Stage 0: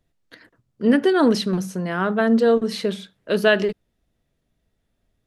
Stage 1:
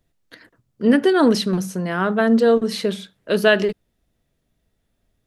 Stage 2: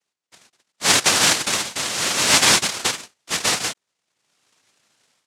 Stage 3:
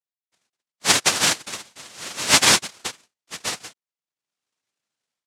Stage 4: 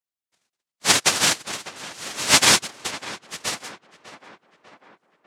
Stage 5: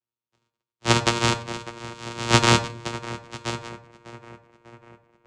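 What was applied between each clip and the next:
high-shelf EQ 8,100 Hz +4.5 dB; level +1.5 dB
automatic gain control gain up to 16.5 dB; cochlear-implant simulation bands 1; level −6 dB
expander for the loud parts 2.5 to 1, over −27 dBFS; level +1.5 dB
tape delay 598 ms, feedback 62%, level −13.5 dB, low-pass 2,300 Hz
channel vocoder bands 4, saw 117 Hz; convolution reverb RT60 0.50 s, pre-delay 5 ms, DRR 7.5 dB; level −1 dB

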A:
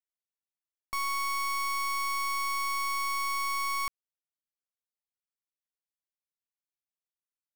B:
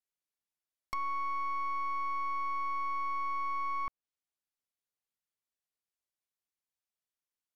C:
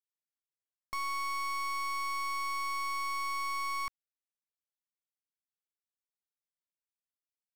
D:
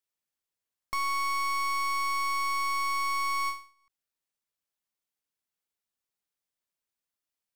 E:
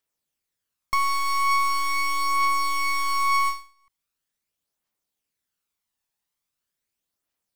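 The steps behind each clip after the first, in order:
treble cut that deepens with the level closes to 1,300 Hz
leveller curve on the samples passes 5; level −4.5 dB
every ending faded ahead of time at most 150 dB per second; level +5.5 dB
phase shifter 0.41 Hz, delay 1.2 ms, feedback 38%; level +5 dB

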